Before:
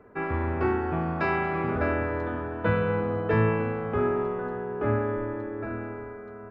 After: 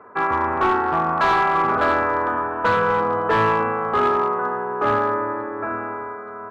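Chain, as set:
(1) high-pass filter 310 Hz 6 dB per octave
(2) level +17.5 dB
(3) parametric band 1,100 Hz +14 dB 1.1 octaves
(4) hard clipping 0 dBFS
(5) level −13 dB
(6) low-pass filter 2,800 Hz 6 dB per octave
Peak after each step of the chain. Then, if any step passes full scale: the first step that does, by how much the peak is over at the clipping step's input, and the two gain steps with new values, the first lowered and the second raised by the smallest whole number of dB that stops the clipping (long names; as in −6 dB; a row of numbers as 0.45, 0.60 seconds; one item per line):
−14.0, +3.5, +9.5, 0.0, −13.0, −13.0 dBFS
step 2, 9.5 dB
step 2 +7.5 dB, step 5 −3 dB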